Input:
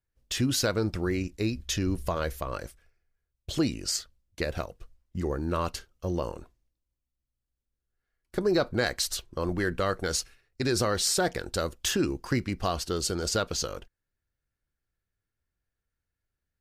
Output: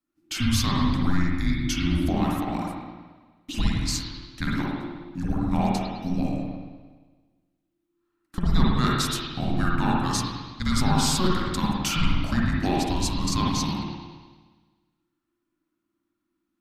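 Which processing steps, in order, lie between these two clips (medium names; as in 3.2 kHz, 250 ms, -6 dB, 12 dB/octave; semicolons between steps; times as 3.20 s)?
frequency shift -360 Hz; spring tank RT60 1.4 s, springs 52/57 ms, chirp 55 ms, DRR -4.5 dB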